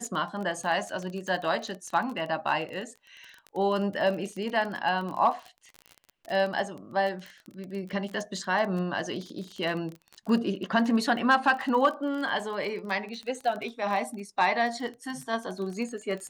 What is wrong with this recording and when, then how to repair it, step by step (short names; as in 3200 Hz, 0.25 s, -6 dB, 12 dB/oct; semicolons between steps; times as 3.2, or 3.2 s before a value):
crackle 22/s -33 dBFS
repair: de-click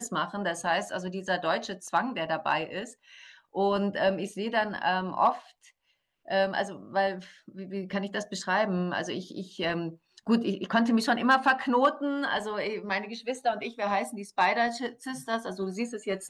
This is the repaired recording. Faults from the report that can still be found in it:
none